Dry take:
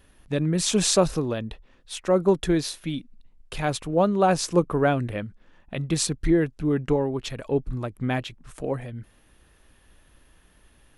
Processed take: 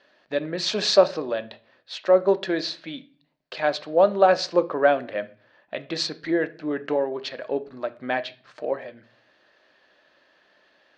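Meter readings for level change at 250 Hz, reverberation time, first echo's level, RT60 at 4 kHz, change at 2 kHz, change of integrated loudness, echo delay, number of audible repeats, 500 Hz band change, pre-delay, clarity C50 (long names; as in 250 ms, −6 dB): −5.5 dB, 0.45 s, no echo audible, 0.40 s, +4.0 dB, +1.0 dB, no echo audible, no echo audible, +3.0 dB, 3 ms, 18.5 dB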